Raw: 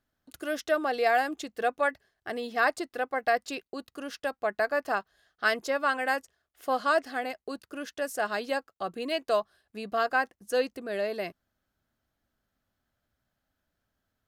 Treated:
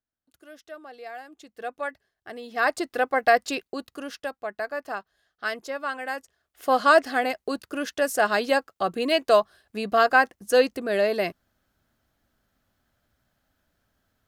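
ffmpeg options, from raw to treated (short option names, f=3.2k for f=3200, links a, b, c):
-af "volume=18.5dB,afade=t=in:st=1.29:d=0.49:silence=0.298538,afade=t=in:st=2.46:d=0.46:silence=0.266073,afade=t=out:st=3.49:d=0.95:silence=0.298538,afade=t=in:st=6.14:d=0.72:silence=0.266073"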